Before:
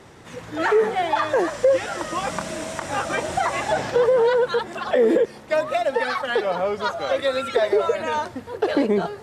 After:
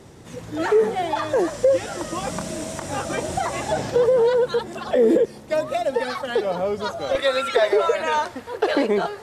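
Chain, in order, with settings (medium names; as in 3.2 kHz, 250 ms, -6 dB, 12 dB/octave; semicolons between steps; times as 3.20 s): peaking EQ 1.6 kHz -9.5 dB 2.8 oct, from 7.15 s 130 Hz; trim +4 dB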